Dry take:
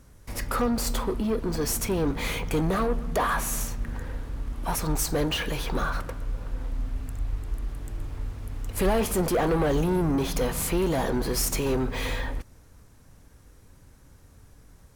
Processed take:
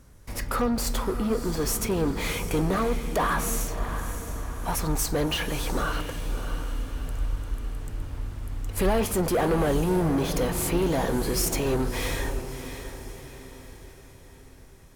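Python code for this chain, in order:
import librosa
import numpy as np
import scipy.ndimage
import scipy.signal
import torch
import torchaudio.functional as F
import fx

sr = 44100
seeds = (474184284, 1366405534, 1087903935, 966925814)

y = fx.echo_diffused(x, sr, ms=650, feedback_pct=48, wet_db=-10.0)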